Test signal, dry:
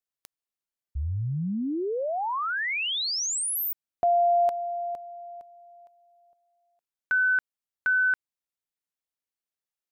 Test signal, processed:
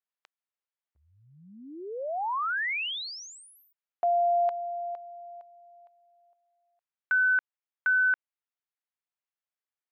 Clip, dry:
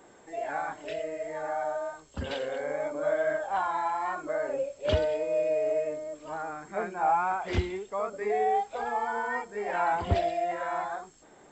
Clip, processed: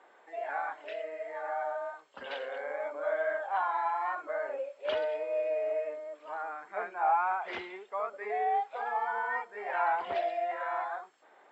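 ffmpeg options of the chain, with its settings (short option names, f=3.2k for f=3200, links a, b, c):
-af "highpass=680,lowpass=2.7k"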